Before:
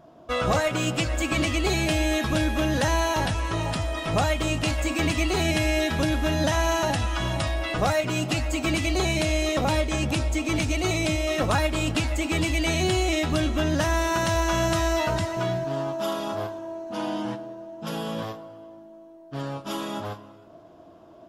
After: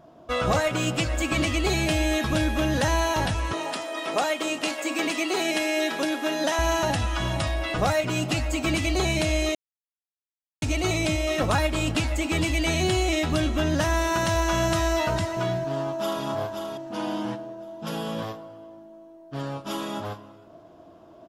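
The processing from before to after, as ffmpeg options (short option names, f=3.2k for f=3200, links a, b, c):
-filter_complex "[0:a]asettb=1/sr,asplit=3[a][b][c];[a]atrim=end=3.534[d];[b]atrim=start=3.53:end=6.59,asetpts=PTS-STARTPTS,afade=t=in:d=0.004:c=qsin,afade=t=out:st=3.056:d=0.004:c=qsin,highpass=f=270:w=0.5412,highpass=f=270:w=1.3066[e];[c]atrim=start=6.586[f];[d][e]acrossfade=d=0.004:c1=hsin:c2=qsin[g];[g][f]acrossfade=d=0.004:c1=qsin:c2=hsin,asplit=2[h][i];[i]afade=t=in:st=15.63:d=0.01,afade=t=out:st=16.24:d=0.01,aecho=0:1:530|1060|1590|2120:0.473151|0.141945|0.0425836|0.0127751[j];[h][j]amix=inputs=2:normalize=0,asplit=3[k][l][m];[k]atrim=end=9.55,asetpts=PTS-STARTPTS,afade=t=out:st=9.546:d=0.004:c=hsin[n];[l]atrim=start=9.55:end=10.62,asetpts=PTS-STARTPTS,volume=0[o];[m]atrim=start=10.62,asetpts=PTS-STARTPTS,afade=t=in:d=0.004:c=hsin[p];[n][o][p]concat=n=3:v=0:a=1"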